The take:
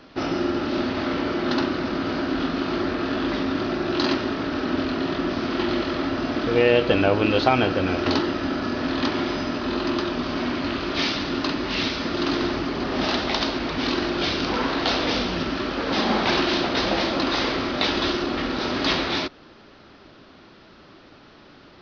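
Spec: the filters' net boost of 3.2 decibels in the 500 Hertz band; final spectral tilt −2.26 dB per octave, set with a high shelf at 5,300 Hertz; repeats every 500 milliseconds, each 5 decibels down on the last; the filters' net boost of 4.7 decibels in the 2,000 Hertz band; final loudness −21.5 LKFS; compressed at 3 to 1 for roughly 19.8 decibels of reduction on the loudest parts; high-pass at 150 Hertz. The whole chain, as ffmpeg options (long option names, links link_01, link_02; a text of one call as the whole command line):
ffmpeg -i in.wav -af "highpass=150,equalizer=frequency=500:width_type=o:gain=4,equalizer=frequency=2000:width_type=o:gain=7,highshelf=frequency=5300:gain=-8,acompressor=threshold=-38dB:ratio=3,aecho=1:1:500|1000|1500|2000|2500|3000|3500:0.562|0.315|0.176|0.0988|0.0553|0.031|0.0173,volume=13dB" out.wav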